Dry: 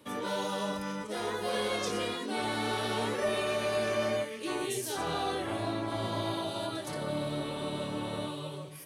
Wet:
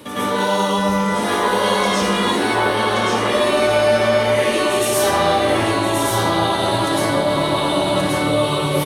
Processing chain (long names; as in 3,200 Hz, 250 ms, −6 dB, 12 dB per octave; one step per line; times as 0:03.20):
0:02.43–0:03.19: low-pass filter 2,900 Hz
in parallel at 0 dB: compressor whose output falls as the input rises −41 dBFS, ratio −1
on the sum: brickwall limiter −27.5 dBFS, peak gain reduction 8.5 dB
on a send: single-tap delay 1,127 ms −3.5 dB
on the sum: dense smooth reverb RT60 0.58 s, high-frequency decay 0.85×, pre-delay 95 ms, DRR −9.5 dB
level +7 dB